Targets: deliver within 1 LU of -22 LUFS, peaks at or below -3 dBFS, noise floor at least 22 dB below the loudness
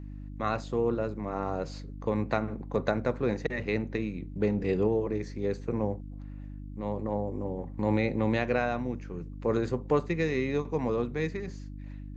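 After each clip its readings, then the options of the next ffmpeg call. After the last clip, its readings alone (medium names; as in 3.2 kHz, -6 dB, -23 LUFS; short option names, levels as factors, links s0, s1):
hum 50 Hz; highest harmonic 300 Hz; hum level -39 dBFS; loudness -31.0 LUFS; peak level -10.5 dBFS; loudness target -22.0 LUFS
-> -af "bandreject=f=50:t=h:w=4,bandreject=f=100:t=h:w=4,bandreject=f=150:t=h:w=4,bandreject=f=200:t=h:w=4,bandreject=f=250:t=h:w=4,bandreject=f=300:t=h:w=4"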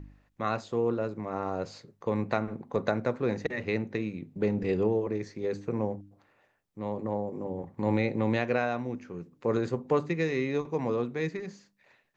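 hum not found; loudness -31.0 LUFS; peak level -10.5 dBFS; loudness target -22.0 LUFS
-> -af "volume=2.82,alimiter=limit=0.708:level=0:latency=1"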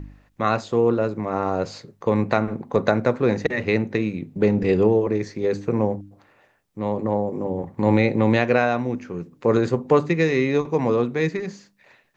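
loudness -22.0 LUFS; peak level -3.0 dBFS; noise floor -62 dBFS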